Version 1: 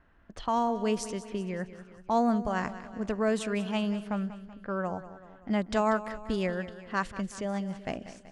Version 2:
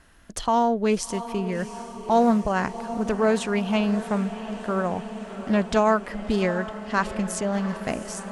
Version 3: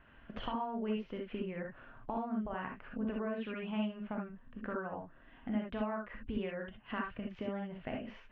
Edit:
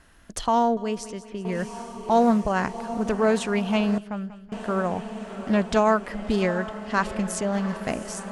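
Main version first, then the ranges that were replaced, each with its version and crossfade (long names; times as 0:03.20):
2
0:00.77–0:01.45: punch in from 1
0:03.98–0:04.52: punch in from 1
not used: 3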